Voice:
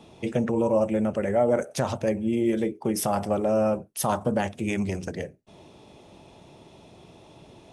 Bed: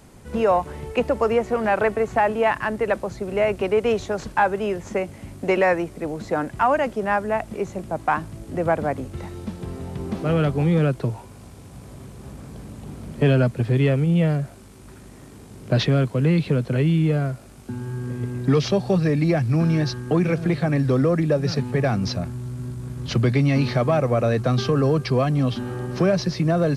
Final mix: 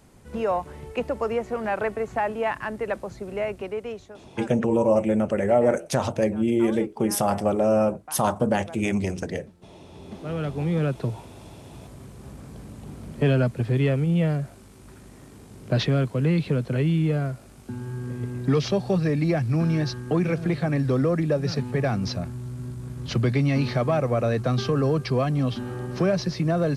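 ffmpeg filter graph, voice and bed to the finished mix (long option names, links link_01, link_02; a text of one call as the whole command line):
ffmpeg -i stem1.wav -i stem2.wav -filter_complex "[0:a]adelay=4150,volume=2.5dB[link_01];[1:a]volume=12dB,afade=type=out:start_time=3.27:duration=0.92:silence=0.177828,afade=type=in:start_time=9.81:duration=1.27:silence=0.125893[link_02];[link_01][link_02]amix=inputs=2:normalize=0" out.wav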